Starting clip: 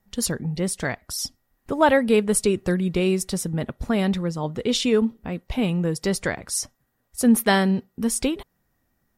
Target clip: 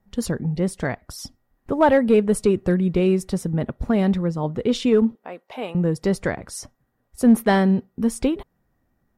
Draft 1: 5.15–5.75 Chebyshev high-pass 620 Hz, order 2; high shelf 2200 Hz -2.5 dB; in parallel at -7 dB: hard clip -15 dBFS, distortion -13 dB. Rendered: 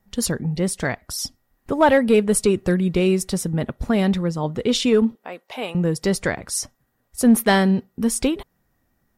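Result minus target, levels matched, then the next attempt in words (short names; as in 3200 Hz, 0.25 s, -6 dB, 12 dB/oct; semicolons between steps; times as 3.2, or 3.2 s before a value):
4000 Hz band +7.0 dB
5.15–5.75 Chebyshev high-pass 620 Hz, order 2; high shelf 2200 Hz -12.5 dB; in parallel at -7 dB: hard clip -15 dBFS, distortion -14 dB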